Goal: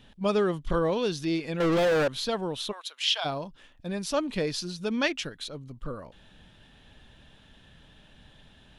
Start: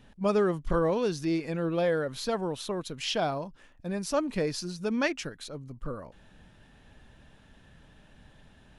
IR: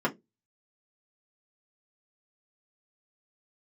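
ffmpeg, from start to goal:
-filter_complex "[0:a]equalizer=f=3400:w=1.9:g=9,asettb=1/sr,asplit=3[s0][s1][s2];[s0]atrim=end=1.604[s3];[s1]atrim=start=1.6:end=2.08,asetpts=PTS-STARTPTS,afade=t=in:d=0.004:c=qsin,afade=t=out:st=0.476:d=0.004:c=qsin,asplit=2[s4][s5];[s5]highpass=f=720:p=1,volume=56.2,asoftclip=type=tanh:threshold=0.133[s6];[s4][s6]amix=inputs=2:normalize=0,lowpass=f=2000:p=1,volume=0.501[s7];[s2]atrim=start=2.076[s8];[s3][s7]acrossfade=d=0.004:c1=hsin:c2=qsin[s9];[s9][s8]acrossfade=d=0.004:c1=qsin:c2=hsin,asplit=3[s10][s11][s12];[s10]afade=t=out:st=2.71:d=0.02[s13];[s11]highpass=f=790:w=0.5412,highpass=f=790:w=1.3066,afade=t=in:st=2.71:d=0.02,afade=t=out:st=3.24:d=0.02[s14];[s12]afade=t=in:st=3.24:d=0.02[s15];[s13][s14][s15]amix=inputs=3:normalize=0"

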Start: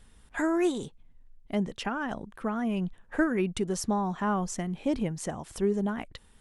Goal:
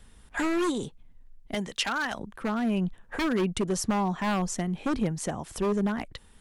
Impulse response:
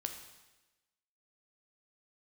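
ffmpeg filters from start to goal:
-filter_complex "[0:a]asettb=1/sr,asplit=3[s0][s1][s2];[s0]atrim=end=1.544[s3];[s1]atrim=start=1.54:end=2.19,asetpts=PTS-STARTPTS,afade=t=in:d=0.004:c=qsin,afade=t=out:st=0.646:d=0.004:c=qsin,tiltshelf=f=840:g=-8.5[s4];[s2]atrim=start=2.186[s5];[s3][s4]acrossfade=d=0.004:c1=hsin:c2=qsin[s6];[s6][s5]acrossfade=d=0.004:c1=qsin:c2=hsin,acrossover=split=200|3300[s7][s8][s9];[s8]aeval=exprs='0.0531*(abs(mod(val(0)/0.0531+3,4)-2)-1)':c=same[s10];[s7][s10][s9]amix=inputs=3:normalize=0,volume=1.41"

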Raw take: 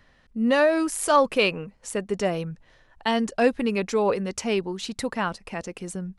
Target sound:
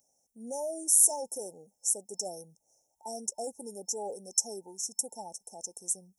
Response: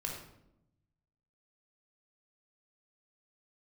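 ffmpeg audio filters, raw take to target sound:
-af "apsyclip=5.62,aderivative,afftfilt=real='re*(1-between(b*sr/4096,900,5300))':imag='im*(1-between(b*sr/4096,900,5300))':win_size=4096:overlap=0.75,volume=0.447"

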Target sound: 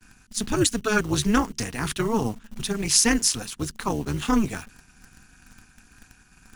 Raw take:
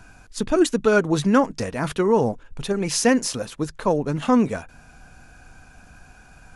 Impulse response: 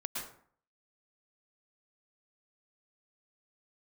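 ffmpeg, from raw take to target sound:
-filter_complex "[0:a]agate=range=0.0224:threshold=0.00708:ratio=3:detection=peak,tremolo=f=220:d=0.824,acrossover=split=120|1100[s0][s1][s2];[s0]acrusher=samples=15:mix=1:aa=0.000001[s3];[s3][s1][s2]amix=inputs=3:normalize=0,equalizer=f=580:t=o:w=0.81:g=-13,asplit=2[s4][s5];[s5]acrusher=bits=6:mix=0:aa=0.000001,volume=0.282[s6];[s4][s6]amix=inputs=2:normalize=0,highshelf=f=3400:g=9"

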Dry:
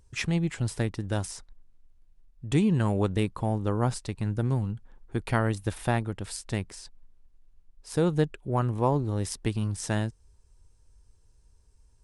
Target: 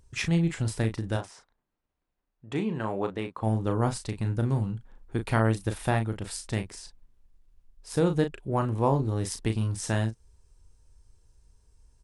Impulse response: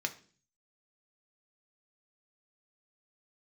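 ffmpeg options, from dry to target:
-filter_complex "[0:a]asplit=3[s0][s1][s2];[s0]afade=t=out:st=1.16:d=0.02[s3];[s1]bandpass=f=950:t=q:w=0.52:csg=0,afade=t=in:st=1.16:d=0.02,afade=t=out:st=3.42:d=0.02[s4];[s2]afade=t=in:st=3.42:d=0.02[s5];[s3][s4][s5]amix=inputs=3:normalize=0,asplit=2[s6][s7];[s7]adelay=36,volume=0.422[s8];[s6][s8]amix=inputs=2:normalize=0"

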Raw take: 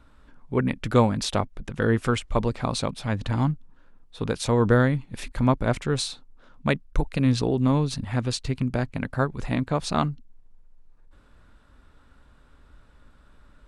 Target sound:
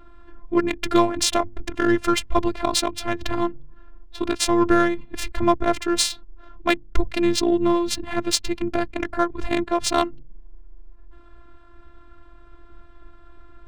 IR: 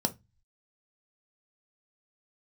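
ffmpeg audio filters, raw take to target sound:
-filter_complex "[0:a]highshelf=f=4800:g=11,bandreject=f=50:t=h:w=6,bandreject=f=100:t=h:w=6,bandreject=f=150:t=h:w=6,bandreject=f=200:t=h:w=6,asplit=2[s0][s1];[s1]acompressor=threshold=0.02:ratio=5,volume=1[s2];[s0][s2]amix=inputs=2:normalize=0,afftfilt=real='hypot(re,im)*cos(PI*b)':imag='0':win_size=512:overlap=0.75,adynamicsmooth=sensitivity=3:basefreq=2100,volume=2"

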